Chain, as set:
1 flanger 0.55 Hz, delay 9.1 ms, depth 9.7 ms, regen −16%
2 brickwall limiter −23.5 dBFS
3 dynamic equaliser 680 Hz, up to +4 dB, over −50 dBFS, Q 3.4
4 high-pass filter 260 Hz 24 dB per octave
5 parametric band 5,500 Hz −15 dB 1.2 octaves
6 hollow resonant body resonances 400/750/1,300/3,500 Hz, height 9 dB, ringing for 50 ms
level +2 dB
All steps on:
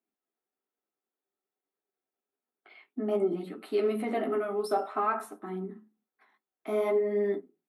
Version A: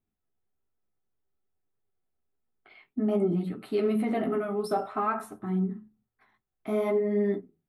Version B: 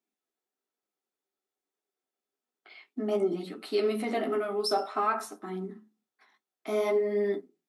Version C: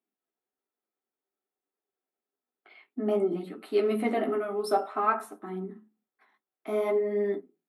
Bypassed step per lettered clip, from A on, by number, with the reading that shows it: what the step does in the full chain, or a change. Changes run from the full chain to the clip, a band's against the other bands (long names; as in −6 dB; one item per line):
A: 4, 125 Hz band +11.0 dB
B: 5, 4 kHz band +11.0 dB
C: 2, change in crest factor +3.0 dB